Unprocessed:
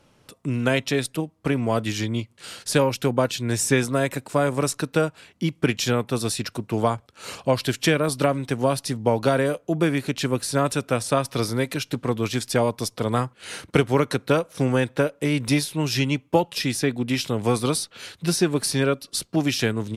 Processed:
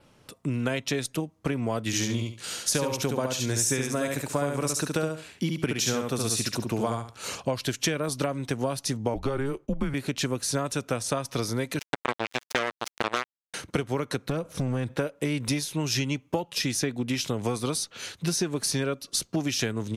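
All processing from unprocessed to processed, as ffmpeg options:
-filter_complex "[0:a]asettb=1/sr,asplit=3[a][b][c];[a]atrim=end=1.864[d];[b]atrim=start=1.86:end=7.28,asetpts=PTS-STARTPTS,afade=t=in:d=0.004:c=qsin,afade=t=out:st=5.416:d=0.004:c=qsin,highshelf=f=5.9k:g=5,aecho=1:1:70|140|210:0.631|0.126|0.0252,atrim=end_sample=239022[e];[c]atrim=start=7.276[f];[d][e]acrossfade=d=0.004:c1=hsin:c2=qsin[g];[g][f]acrossfade=d=0.004:c1=qsin:c2=hsin,asettb=1/sr,asplit=3[h][i][j];[h]atrim=end=9.144[k];[i]atrim=start=9.14:end=9.94,asetpts=PTS-STARTPTS,afade=t=in:d=0.004:c=qsin,afade=t=out:st=0.796:d=0.004:c=qsin,agate=range=-33dB:threshold=-53dB:ratio=3:release=100:detection=peak,highshelf=f=2.8k:g=-8.5,afreqshift=-140[l];[j]atrim=start=9.936[m];[k][l]acrossfade=d=0.004:c1=hsin:c2=qsin[n];[n][m]acrossfade=d=0.004:c1=qsin:c2=hsin,asettb=1/sr,asplit=3[o][p][q];[o]atrim=end=11.794[r];[p]atrim=start=11.79:end=13.54,asetpts=PTS-STARTPTS,afade=t=in:d=0.004:c=qsin,afade=t=out:st=1.746:d=0.004:c=qsin,acrusher=bits=2:mix=0:aa=0.5,highpass=f=200:p=1,equalizer=f=2.3k:w=0.34:g=13[s];[q]atrim=start=13.536[t];[r][s]acrossfade=d=0.004:c1=hsin:c2=qsin[u];[u][t]acrossfade=d=0.004:c1=qsin:c2=hsin,asettb=1/sr,asplit=3[v][w][x];[v]atrim=end=14.294[y];[w]atrim=start=14.29:end=14.94,asetpts=PTS-STARTPTS,afade=t=in:d=0.004:c=qsin,afade=t=out:st=0.646:d=0.004:c=qsin,lowshelf=f=290:g=11.5,acompressor=threshold=-23dB:ratio=3:attack=3.2:release=140:knee=1:detection=peak,aeval=exprs='clip(val(0),-1,0.0841)':c=same[z];[x]atrim=start=14.936[aa];[y][z]acrossfade=d=0.004:c1=hsin:c2=qsin[ab];[ab][aa]acrossfade=d=0.004:c1=qsin:c2=hsin,acompressor=threshold=-24dB:ratio=6,adynamicequalizer=threshold=0.00251:dfrequency=6300:dqfactor=4.6:tfrequency=6300:tqfactor=4.6:attack=5:release=100:ratio=0.375:range=4:mode=boostabove:tftype=bell"

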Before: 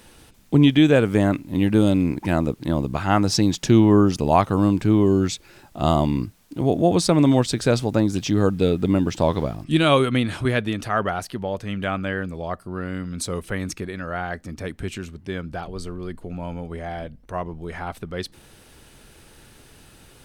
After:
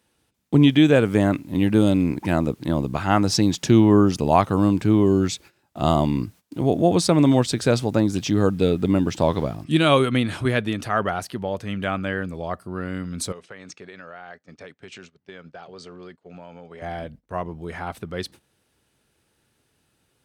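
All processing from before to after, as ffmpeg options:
-filter_complex "[0:a]asettb=1/sr,asplit=3[a][b][c];[a]atrim=end=13.324[d];[b]atrim=start=13.32:end=16.82,asetpts=PTS-STARTPTS,afade=t=in:d=0.004:c=qsin,afade=t=out:st=3.496:d=0.004:c=qsin,highpass=220,equalizer=f=220:t=q:w=4:g=-8,equalizer=f=320:t=q:w=4:g=-9,equalizer=f=1k:t=q:w=4:g=-3,lowpass=f=6.8k:w=0.5412,lowpass=f=6.8k:w=1.3066,acompressor=threshold=-36dB:ratio=5:attack=3.2:release=140:knee=1:detection=peak[e];[c]atrim=start=16.816[f];[d][e]acrossfade=d=0.004:c1=hsin:c2=qsin[g];[g][f]acrossfade=d=0.004:c1=qsin:c2=hsin,agate=range=-18dB:threshold=-42dB:ratio=16:detection=peak,highpass=70"

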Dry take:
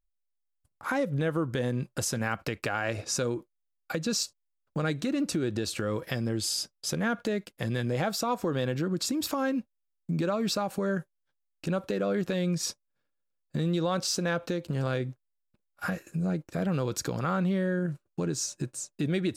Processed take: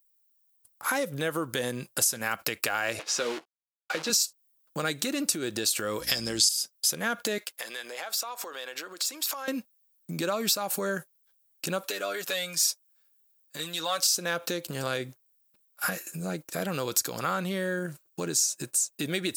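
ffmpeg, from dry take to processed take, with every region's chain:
-filter_complex "[0:a]asettb=1/sr,asplit=3[a][b][c];[a]atrim=end=2.994[d];[b]atrim=start=2.99:end=4.1,asetpts=PTS-STARTPTS,afade=t=in:d=0.004:c=qsin,afade=t=out:st=1.106:d=0.004:c=qsin,acrusher=bits=7:dc=4:mix=0:aa=0.000001,highpass=260,lowpass=3.4k,asplit=2[e][f];[f]adelay=13,volume=-9dB[g];[e][g]amix=inputs=2:normalize=0,atrim=end_sample=48951[h];[c]atrim=start=4.096[i];[d][h]acrossfade=d=0.004:c1=hsin:c2=qsin[j];[j][i]acrossfade=d=0.004:c1=qsin:c2=hsin,asettb=1/sr,asplit=3[k][l][m];[k]atrim=end=6.004[n];[l]atrim=start=6:end=6.49,asetpts=PTS-STARTPTS,afade=t=in:d=0.004:c=qsin,afade=t=out:st=0.486:d=0.004:c=qsin,lowpass=12k,equalizer=f=5.5k:t=o:w=1.4:g=13,aeval=exprs='val(0)+0.0126*(sin(2*PI*60*n/s)+sin(2*PI*2*60*n/s)/2+sin(2*PI*3*60*n/s)/3+sin(2*PI*4*60*n/s)/4+sin(2*PI*5*60*n/s)/5)':c=same[o];[m]atrim=start=6.486[p];[n][o]acrossfade=d=0.004:c1=hsin:c2=qsin[q];[q][p]acrossfade=d=0.004:c1=qsin:c2=hsin,asettb=1/sr,asplit=3[r][s][t];[r]atrim=end=7.384[u];[s]atrim=start=7.38:end=9.48,asetpts=PTS-STARTPTS,afade=t=in:d=0.004:c=qsin,afade=t=out:st=2.096:d=0.004:c=qsin,highpass=470,acompressor=threshold=-40dB:ratio=6:attack=3.2:release=140:knee=1:detection=peak,asplit=2[v][w];[w]highpass=f=720:p=1,volume=10dB,asoftclip=type=tanh:threshold=-25dB[x];[v][x]amix=inputs=2:normalize=0,lowpass=f=4.5k:p=1,volume=-6dB[y];[t]atrim=start=9.476[z];[u][y]acrossfade=d=0.004:c1=hsin:c2=qsin[aa];[aa][z]acrossfade=d=0.004:c1=qsin:c2=hsin,asettb=1/sr,asplit=3[ab][ac][ad];[ab]atrim=end=11.834[ae];[ac]atrim=start=11.83:end=14.07,asetpts=PTS-STARTPTS,afade=t=in:d=0.004:c=qsin,afade=t=out:st=2.236:d=0.004:c=qsin,highpass=f=890:p=1,aecho=1:1:7:0.67,atrim=end_sample=98784[af];[ad]atrim=start=14.066[ag];[ae][af]acrossfade=d=0.004:c1=hsin:c2=qsin[ah];[ah][ag]acrossfade=d=0.004:c1=qsin:c2=hsin,aemphasis=mode=production:type=riaa,acompressor=threshold=-26dB:ratio=4,volume=3dB"

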